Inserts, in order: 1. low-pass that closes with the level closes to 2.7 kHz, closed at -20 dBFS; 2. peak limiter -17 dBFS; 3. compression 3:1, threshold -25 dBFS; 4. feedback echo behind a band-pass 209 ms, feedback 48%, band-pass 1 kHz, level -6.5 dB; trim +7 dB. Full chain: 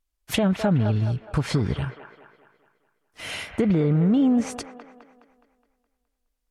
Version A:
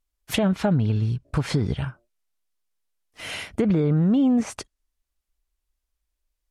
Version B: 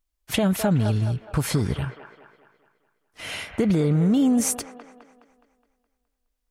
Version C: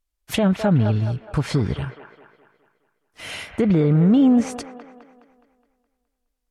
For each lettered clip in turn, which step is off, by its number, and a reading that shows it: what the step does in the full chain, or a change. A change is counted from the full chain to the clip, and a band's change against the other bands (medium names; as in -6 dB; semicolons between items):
4, echo-to-direct -7.5 dB to none; 1, 8 kHz band +10.0 dB; 3, mean gain reduction 2.0 dB